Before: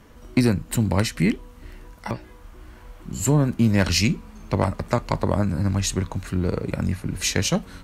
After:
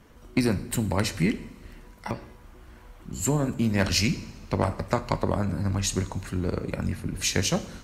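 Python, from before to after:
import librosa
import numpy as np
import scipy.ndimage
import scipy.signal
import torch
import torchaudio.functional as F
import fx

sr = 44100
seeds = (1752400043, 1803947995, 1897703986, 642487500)

y = fx.rev_double_slope(x, sr, seeds[0], early_s=0.78, late_s=3.0, knee_db=-18, drr_db=9.0)
y = fx.hpss(y, sr, part='harmonic', gain_db=-5)
y = F.gain(torch.from_numpy(y), -2.0).numpy()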